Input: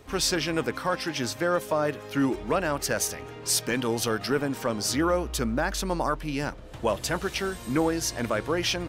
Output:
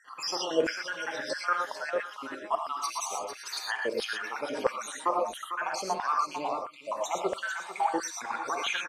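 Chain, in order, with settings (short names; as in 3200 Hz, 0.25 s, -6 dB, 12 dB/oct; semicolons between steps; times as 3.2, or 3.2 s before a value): random spectral dropouts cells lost 71%; LPF 8300 Hz 12 dB/oct; low shelf 330 Hz +11 dB; on a send: echo 0.449 s -8.5 dB; on the sum: non-linear reverb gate 0.14 s rising, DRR 2 dB; LFO high-pass saw down 1.5 Hz 510–1700 Hz; gain -2.5 dB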